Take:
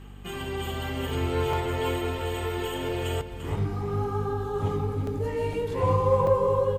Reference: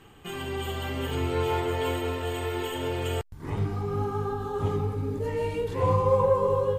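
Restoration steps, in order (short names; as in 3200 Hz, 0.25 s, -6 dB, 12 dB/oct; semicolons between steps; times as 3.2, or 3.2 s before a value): de-hum 48.8 Hz, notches 5; interpolate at 1.53/2.89/5.07/5.53/6.27, 2.8 ms; inverse comb 0.345 s -10.5 dB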